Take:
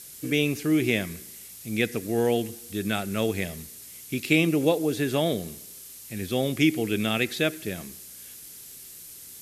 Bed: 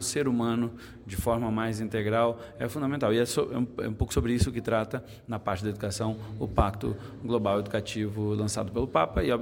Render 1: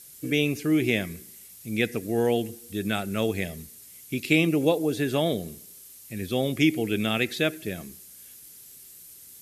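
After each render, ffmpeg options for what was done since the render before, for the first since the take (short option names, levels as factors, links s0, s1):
-af "afftdn=nr=6:nf=-45"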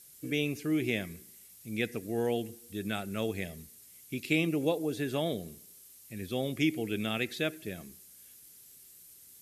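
-af "volume=0.447"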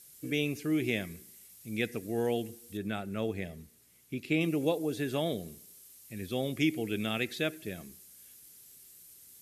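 -filter_complex "[0:a]asettb=1/sr,asplit=3[s0][s1][s2];[s0]atrim=end=2.774[s3];[s1]atrim=start=2.77:end=4.41,asetpts=PTS-STARTPTS,afade=t=in:d=0.004:c=qsin,afade=t=out:st=1.636:d=0.004:c=qsin,highshelf=f=3200:g=-10[s4];[s2]atrim=start=4.406[s5];[s3][s4]acrossfade=d=0.004:c1=hsin:c2=qsin[s6];[s6][s5]acrossfade=d=0.004:c1=qsin:c2=hsin"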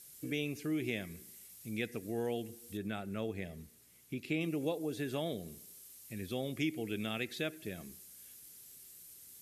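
-af "acompressor=threshold=0.00794:ratio=1.5"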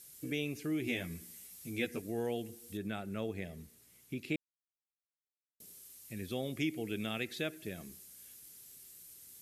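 -filter_complex "[0:a]asettb=1/sr,asplit=3[s0][s1][s2];[s0]atrim=end=0.864[s3];[s1]atrim=start=0.86:end=2.02,asetpts=PTS-STARTPTS,afade=t=in:d=0.004:c=qsin,afade=t=out:st=1.156:d=0.004:c=qsin,asplit=2[s4][s5];[s5]adelay=12,volume=0.794[s6];[s4][s6]amix=inputs=2:normalize=0,atrim=end_sample=51156[s7];[s2]atrim=start=2.016[s8];[s3][s7]acrossfade=d=0.004:c1=hsin:c2=qsin[s9];[s9][s8]acrossfade=d=0.004:c1=qsin:c2=hsin,asplit=3[s10][s11][s12];[s10]atrim=end=4.36,asetpts=PTS-STARTPTS,afade=t=out:st=4.356:d=0.004:c=hsin[s13];[s11]atrim=start=4.36:end=5.6,asetpts=PTS-STARTPTS,volume=0[s14];[s12]atrim=start=5.6,asetpts=PTS-STARTPTS,afade=t=in:d=0.004:c=hsin[s15];[s13][s14][s15]concat=n=3:v=0:a=1"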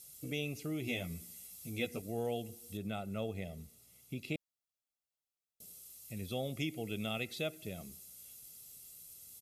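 -af "equalizer=f=1700:t=o:w=0.45:g=-12.5,aecho=1:1:1.5:0.44"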